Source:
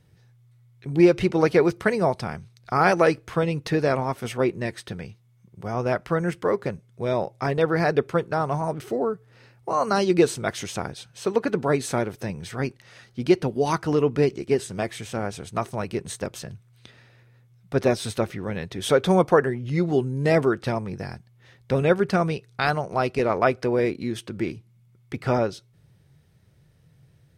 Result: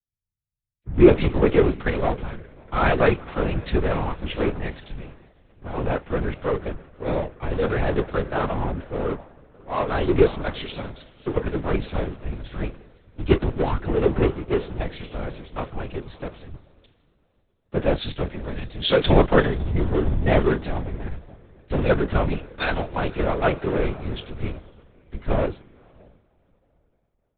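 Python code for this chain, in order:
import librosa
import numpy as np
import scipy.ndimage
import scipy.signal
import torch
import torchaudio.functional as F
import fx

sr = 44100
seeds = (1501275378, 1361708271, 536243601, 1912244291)

p1 = fx.block_float(x, sr, bits=5)
p2 = fx.low_shelf(p1, sr, hz=120.0, db=10.0)
p3 = fx.fuzz(p2, sr, gain_db=31.0, gate_db=-39.0)
p4 = p2 + (p3 * 10.0 ** (-8.0 / 20.0))
p5 = fx.doubler(p4, sr, ms=32.0, db=-14.0)
p6 = p5 + fx.echo_diffused(p5, sr, ms=571, feedback_pct=57, wet_db=-13.5, dry=0)
p7 = fx.lpc_vocoder(p6, sr, seeds[0], excitation='whisper', order=10)
p8 = fx.band_widen(p7, sr, depth_pct=100)
y = p8 * 10.0 ** (-6.5 / 20.0)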